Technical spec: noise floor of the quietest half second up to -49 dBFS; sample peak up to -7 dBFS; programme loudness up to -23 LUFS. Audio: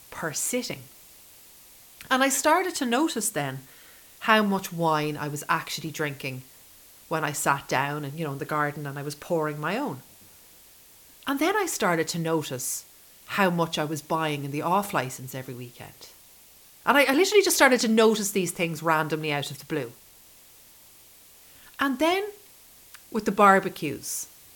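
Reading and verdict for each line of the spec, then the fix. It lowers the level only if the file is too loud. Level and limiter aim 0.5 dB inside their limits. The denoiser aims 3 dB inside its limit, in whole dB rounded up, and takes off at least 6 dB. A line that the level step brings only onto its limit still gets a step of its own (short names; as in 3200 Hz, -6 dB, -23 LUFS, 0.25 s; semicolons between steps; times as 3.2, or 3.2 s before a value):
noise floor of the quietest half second -53 dBFS: OK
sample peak -4.0 dBFS: fail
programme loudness -25.0 LUFS: OK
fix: limiter -7.5 dBFS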